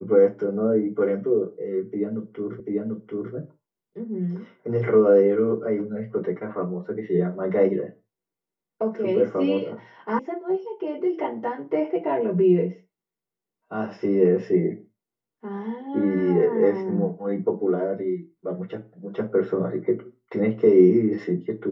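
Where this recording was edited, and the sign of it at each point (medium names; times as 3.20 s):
2.60 s: repeat of the last 0.74 s
10.19 s: sound stops dead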